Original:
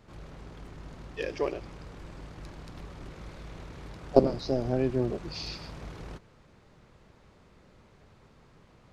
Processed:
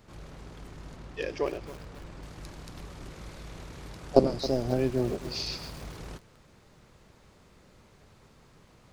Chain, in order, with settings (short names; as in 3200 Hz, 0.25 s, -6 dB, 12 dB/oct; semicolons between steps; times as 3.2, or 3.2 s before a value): high shelf 5800 Hz +8.5 dB, from 0.96 s +2 dB, from 2.23 s +12 dB; lo-fi delay 0.271 s, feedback 55%, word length 6-bit, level -14.5 dB